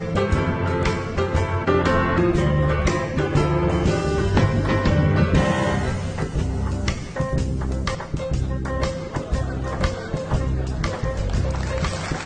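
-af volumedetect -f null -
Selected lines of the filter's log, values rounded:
mean_volume: -21.2 dB
max_volume: -4.0 dB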